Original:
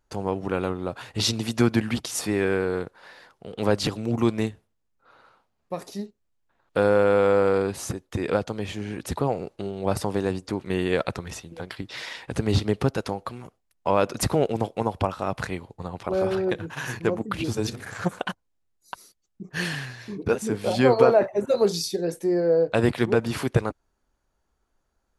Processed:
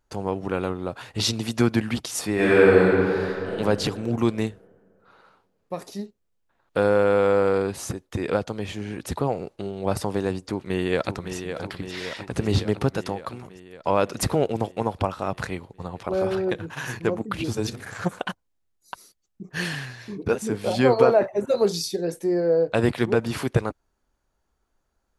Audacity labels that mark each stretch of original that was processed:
2.340000	3.520000	reverb throw, RT60 2.6 s, DRR -9.5 dB
10.390000	11.350000	echo throw 560 ms, feedback 70%, level -8.5 dB

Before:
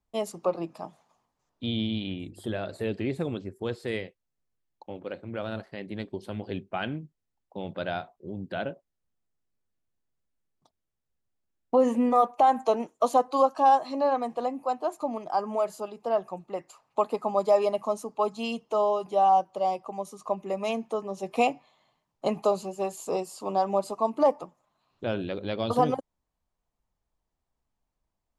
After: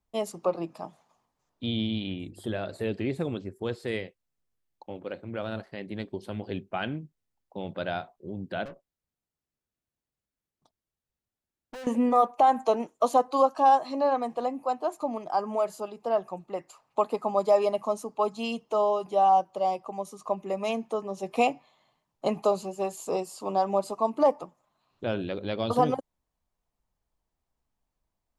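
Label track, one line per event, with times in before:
8.650000	11.870000	valve stage drive 39 dB, bias 0.5

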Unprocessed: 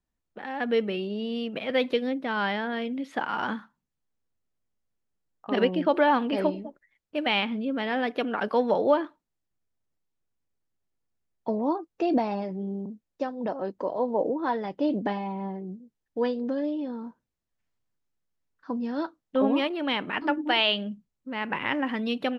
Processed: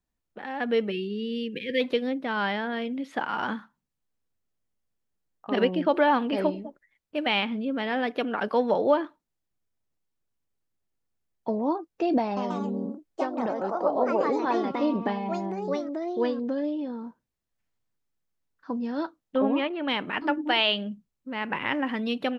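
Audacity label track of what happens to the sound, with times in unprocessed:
0.910000	1.810000	spectral selection erased 520–1600 Hz
12.230000	17.020000	ever faster or slower copies 136 ms, each echo +3 st, echoes 2
19.380000	19.880000	Chebyshev low-pass 2.5 kHz

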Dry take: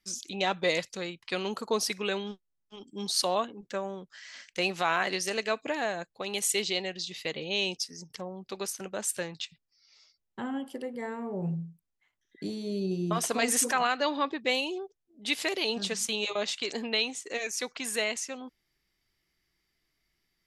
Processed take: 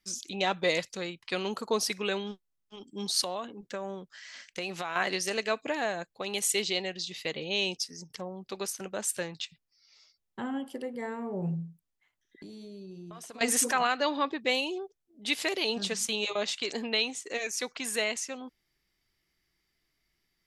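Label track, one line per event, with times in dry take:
3.210000	4.960000	compression, threshold -30 dBFS
11.670000	13.410000	compression, threshold -43 dBFS

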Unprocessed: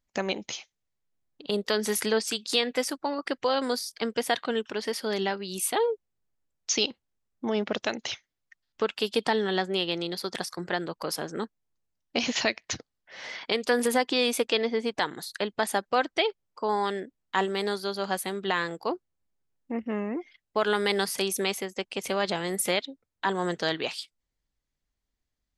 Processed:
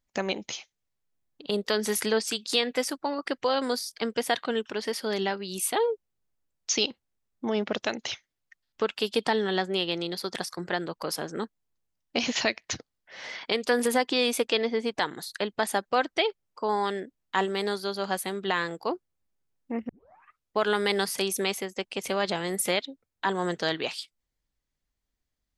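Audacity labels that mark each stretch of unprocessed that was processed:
19.890000	19.890000	tape start 0.69 s

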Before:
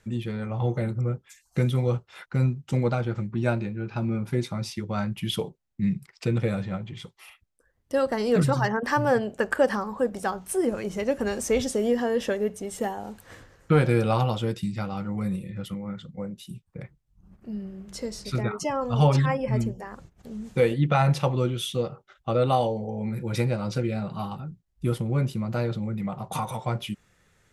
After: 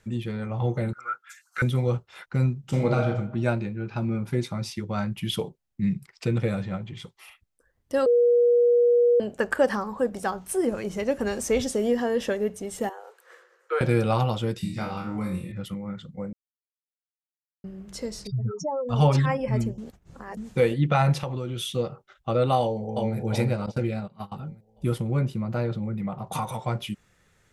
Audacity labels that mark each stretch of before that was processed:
0.930000	1.620000	resonant high-pass 1.4 kHz, resonance Q 12
2.590000	3.050000	reverb throw, RT60 0.8 s, DRR 0 dB
8.060000	9.200000	bleep 480 Hz -15.5 dBFS
12.890000	13.810000	rippled Chebyshev high-pass 350 Hz, ripple 9 dB
14.580000	15.520000	flutter echo walls apart 3.9 m, dies away in 0.42 s
16.330000	17.640000	mute
18.270000	18.890000	spectral contrast enhancement exponent 3.5
19.780000	20.370000	reverse
21.210000	21.710000	compression, threshold -26 dBFS
22.600000	23.160000	echo throw 360 ms, feedback 45%, level -3 dB
23.660000	24.320000	gate -30 dBFS, range -20 dB
25.190000	26.270000	treble shelf 3.4 kHz -7.5 dB

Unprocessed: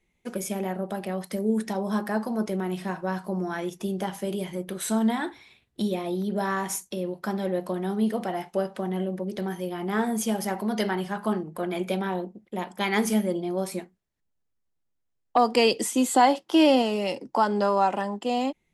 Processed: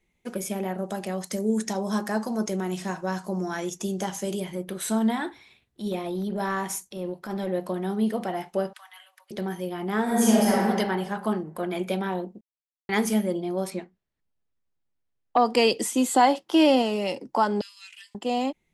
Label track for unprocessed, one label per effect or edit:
0.780000	4.400000	peaking EQ 6.7 kHz +14.5 dB 0.69 oct
5.220000	7.480000	transient shaper attack -10 dB, sustain -1 dB
8.730000	9.310000	Bessel high-pass 1.7 kHz, order 8
10.030000	10.610000	reverb throw, RT60 1.5 s, DRR -6.5 dB
12.410000	12.890000	mute
13.700000	15.460000	low-pass 4.6 kHz
17.610000	18.150000	steep high-pass 2.3 kHz

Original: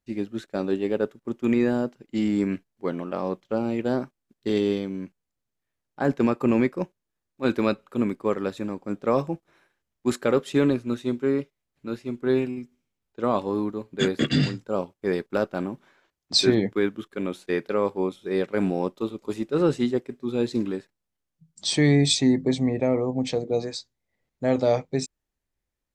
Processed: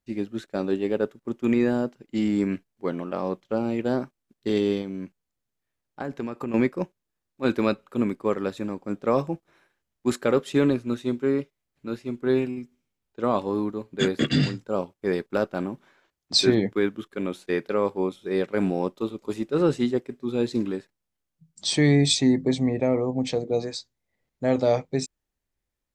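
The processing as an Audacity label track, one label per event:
4.810000	6.540000	compression, threshold -27 dBFS

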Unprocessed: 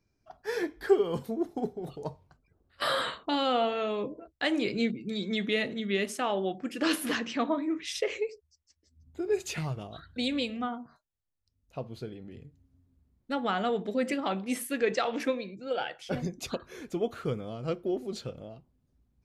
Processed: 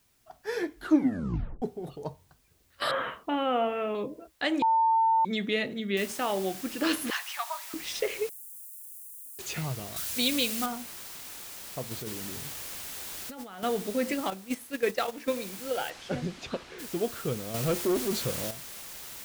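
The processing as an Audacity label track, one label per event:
0.750000	0.750000	tape stop 0.87 s
2.910000	3.950000	steep low-pass 2.9 kHz 48 dB/octave
4.620000	5.250000	bleep 899 Hz -20 dBFS
5.970000	5.970000	noise floor step -69 dB -43 dB
7.100000	7.740000	steep high-pass 750 Hz 48 dB/octave
8.290000	9.390000	inverse Chebyshev high-pass stop band from 2.2 kHz, stop band 70 dB
9.960000	10.660000	treble shelf 2.4 kHz +9.5 dB
11.910000	13.630000	compressor with a negative ratio -38 dBFS
14.300000	15.330000	gate -30 dBFS, range -10 dB
15.890000	16.780000	low-pass 5.8 kHz -> 3.4 kHz
17.540000	18.510000	waveshaping leveller passes 2

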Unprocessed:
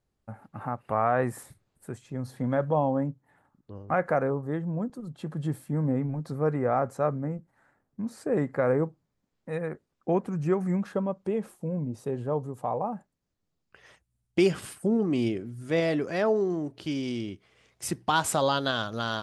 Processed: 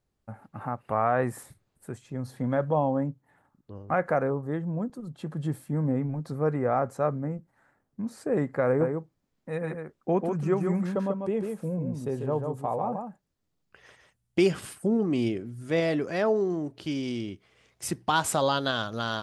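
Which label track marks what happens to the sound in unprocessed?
8.660000	14.410000	delay 144 ms -5 dB

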